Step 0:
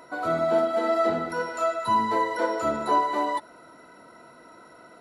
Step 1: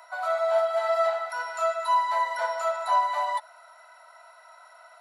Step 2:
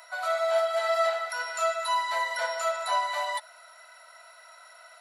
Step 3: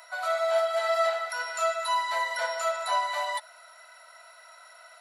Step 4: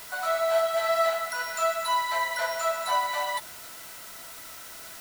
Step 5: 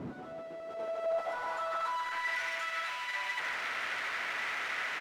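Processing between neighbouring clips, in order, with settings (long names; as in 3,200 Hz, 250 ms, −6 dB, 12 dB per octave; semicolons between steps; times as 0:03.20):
Butterworth high-pass 610 Hz 72 dB per octave
parametric band 890 Hz −12.5 dB 1.4 octaves; level +7 dB
no processing that can be heard
background noise white −45 dBFS; level +1 dB
comparator with hysteresis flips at −39.5 dBFS; band-pass filter sweep 200 Hz → 2,000 Hz, 0:00.01–0:02.38; far-end echo of a speakerphone 150 ms, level −6 dB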